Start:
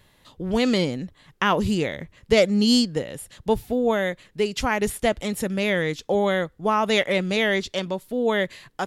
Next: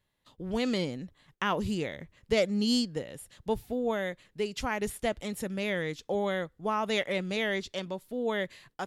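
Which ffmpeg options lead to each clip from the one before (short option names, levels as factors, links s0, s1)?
-af "agate=range=0.251:threshold=0.00251:ratio=16:detection=peak,volume=0.376"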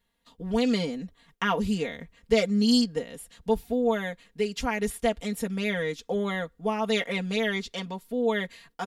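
-af "aecho=1:1:4.3:1"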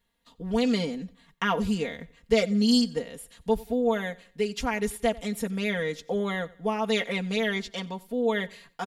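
-af "aecho=1:1:91|182|273:0.0794|0.0302|0.0115"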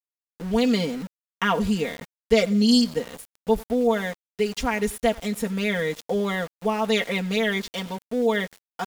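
-af "aeval=exprs='val(0)*gte(abs(val(0)),0.01)':c=same,volume=1.5"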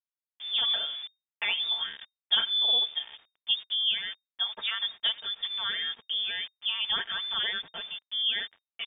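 -af "lowpass=f=3100:t=q:w=0.5098,lowpass=f=3100:t=q:w=0.6013,lowpass=f=3100:t=q:w=0.9,lowpass=f=3100:t=q:w=2.563,afreqshift=-3700,volume=0.447"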